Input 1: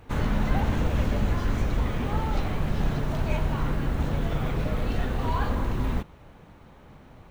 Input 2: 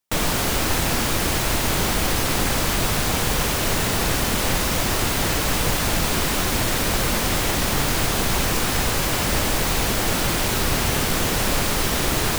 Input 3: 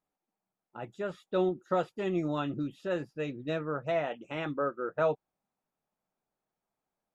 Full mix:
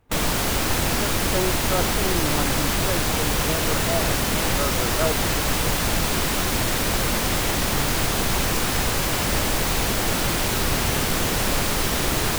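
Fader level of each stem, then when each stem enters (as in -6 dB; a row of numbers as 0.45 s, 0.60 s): -12.5 dB, -1.0 dB, +2.5 dB; 0.00 s, 0.00 s, 0.00 s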